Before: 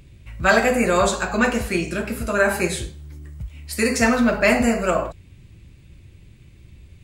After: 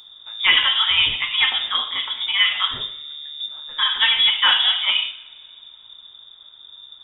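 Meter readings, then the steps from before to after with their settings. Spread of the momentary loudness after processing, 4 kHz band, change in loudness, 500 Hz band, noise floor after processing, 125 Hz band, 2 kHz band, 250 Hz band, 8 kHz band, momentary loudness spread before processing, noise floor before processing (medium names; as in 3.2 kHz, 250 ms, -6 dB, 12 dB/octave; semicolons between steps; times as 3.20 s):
15 LU, +19.5 dB, +3.0 dB, under -25 dB, -47 dBFS, under -15 dB, +0.5 dB, under -25 dB, under -40 dB, 18 LU, -48 dBFS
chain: frequency inversion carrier 3.6 kHz; two-slope reverb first 0.81 s, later 2.7 s, from -18 dB, DRR 11.5 dB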